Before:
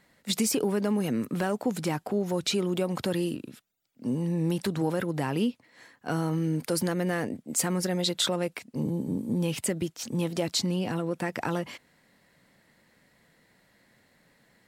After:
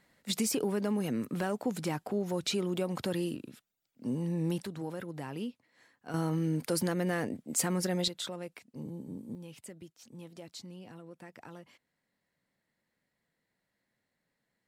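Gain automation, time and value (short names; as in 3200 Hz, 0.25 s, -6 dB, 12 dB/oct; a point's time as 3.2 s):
-4.5 dB
from 4.63 s -11 dB
from 6.14 s -3 dB
from 8.08 s -12 dB
from 9.35 s -19 dB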